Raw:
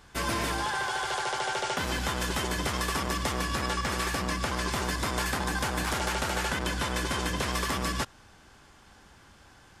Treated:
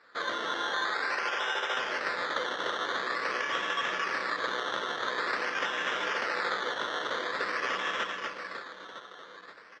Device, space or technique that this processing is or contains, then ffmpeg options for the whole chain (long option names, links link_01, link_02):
circuit-bent sampling toy: -af "aecho=1:1:240|552|957.6|1485|2170:0.631|0.398|0.251|0.158|0.1,acrusher=samples=14:mix=1:aa=0.000001:lfo=1:lforange=8.4:lforate=0.47,highpass=450,equalizer=frequency=490:width_type=q:width=4:gain=6,equalizer=frequency=790:width_type=q:width=4:gain=-6,equalizer=frequency=1300:width_type=q:width=4:gain=6,equalizer=frequency=1800:width_type=q:width=4:gain=7,equalizer=frequency=3400:width_type=q:width=4:gain=7,lowpass=frequency=5400:width=0.5412,lowpass=frequency=5400:width=1.3066,volume=-4.5dB"